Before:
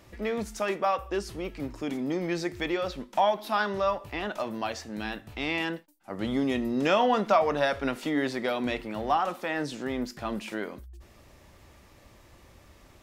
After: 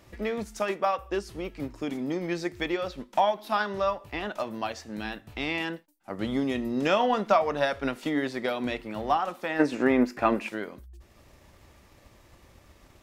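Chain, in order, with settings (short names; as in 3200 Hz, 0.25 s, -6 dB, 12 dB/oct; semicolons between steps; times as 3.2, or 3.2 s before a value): spectral gain 9.59–10.48, 230–2800 Hz +10 dB; transient shaper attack +3 dB, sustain -3 dB; gain -1 dB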